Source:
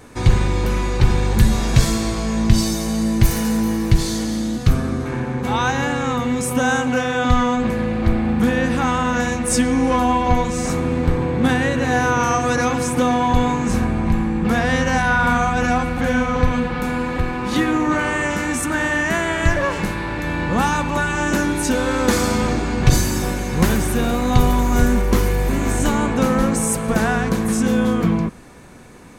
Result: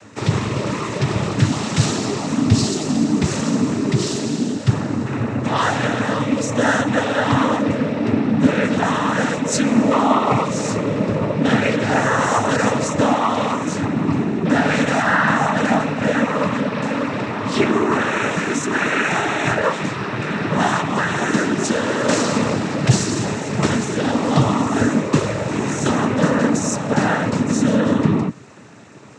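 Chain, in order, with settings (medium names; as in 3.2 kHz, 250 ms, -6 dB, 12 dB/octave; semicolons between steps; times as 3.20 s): 13.12–13.78 s: high-pass 250 Hz 6 dB/octave; noise-vocoded speech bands 12; trim +1.5 dB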